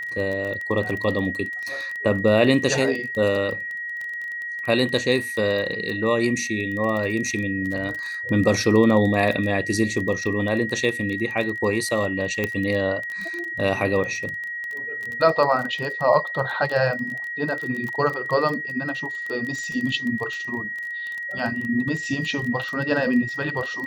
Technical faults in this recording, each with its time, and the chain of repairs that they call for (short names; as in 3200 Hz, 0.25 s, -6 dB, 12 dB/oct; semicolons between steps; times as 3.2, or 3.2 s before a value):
crackle 21/s -27 dBFS
tone 1900 Hz -28 dBFS
12.44 pop -10 dBFS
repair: de-click; notch 1900 Hz, Q 30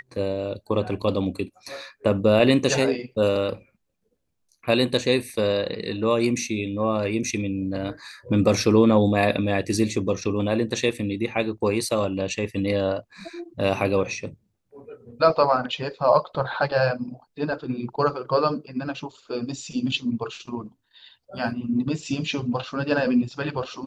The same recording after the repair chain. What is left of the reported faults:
none